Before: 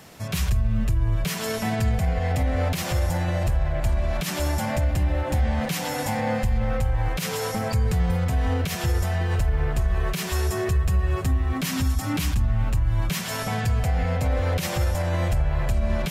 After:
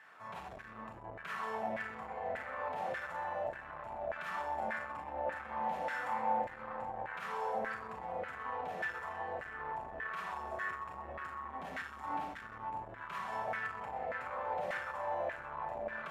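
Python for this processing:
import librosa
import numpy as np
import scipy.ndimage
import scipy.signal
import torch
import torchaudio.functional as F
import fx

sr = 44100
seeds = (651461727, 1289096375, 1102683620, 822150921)

p1 = x + fx.echo_split(x, sr, split_hz=460.0, low_ms=610, high_ms=126, feedback_pct=52, wet_db=-12.5, dry=0)
p2 = fx.rev_schroeder(p1, sr, rt60_s=0.42, comb_ms=28, drr_db=0.0)
p3 = 10.0 ** (-21.5 / 20.0) * (np.abs((p2 / 10.0 ** (-21.5 / 20.0) + 3.0) % 4.0 - 2.0) - 1.0)
p4 = p2 + F.gain(torch.from_numpy(p3), -5.0).numpy()
p5 = fx.low_shelf(p4, sr, hz=89.0, db=-5.5)
p6 = fx.filter_lfo_bandpass(p5, sr, shape='saw_down', hz=1.7, low_hz=620.0, high_hz=1700.0, q=3.7)
p7 = fx.peak_eq(p6, sr, hz=5200.0, db=-5.5, octaves=0.98)
p8 = fx.comb_fb(p7, sr, f0_hz=880.0, decay_s=0.17, harmonics='all', damping=0.0, mix_pct=60)
y = F.gain(torch.from_numpy(p8), 2.5).numpy()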